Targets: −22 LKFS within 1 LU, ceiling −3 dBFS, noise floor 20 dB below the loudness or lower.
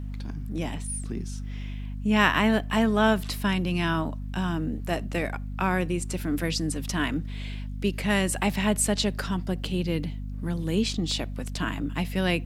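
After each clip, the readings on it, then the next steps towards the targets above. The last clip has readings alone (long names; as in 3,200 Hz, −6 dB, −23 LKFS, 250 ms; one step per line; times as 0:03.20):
mains hum 50 Hz; hum harmonics up to 250 Hz; level of the hum −31 dBFS; integrated loudness −27.5 LKFS; sample peak −5.0 dBFS; target loudness −22.0 LKFS
→ mains-hum notches 50/100/150/200/250 Hz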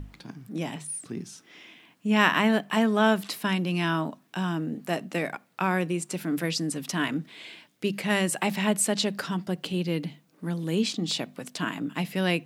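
mains hum none found; integrated loudness −27.5 LKFS; sample peak −5.5 dBFS; target loudness −22.0 LKFS
→ level +5.5 dB
brickwall limiter −3 dBFS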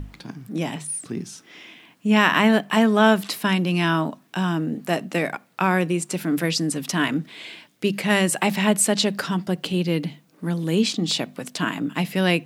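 integrated loudness −22.0 LKFS; sample peak −3.0 dBFS; background noise floor −57 dBFS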